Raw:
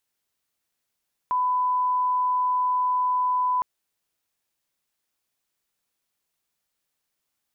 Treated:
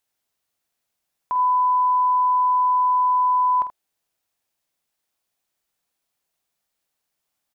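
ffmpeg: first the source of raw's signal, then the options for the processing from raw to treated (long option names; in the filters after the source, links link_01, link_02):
-f lavfi -i "sine=frequency=1000:duration=2.31:sample_rate=44100,volume=-1.94dB"
-filter_complex "[0:a]equalizer=frequency=710:width=2.5:gain=4.5,asplit=2[link_01][link_02];[link_02]aecho=0:1:48|80:0.282|0.237[link_03];[link_01][link_03]amix=inputs=2:normalize=0"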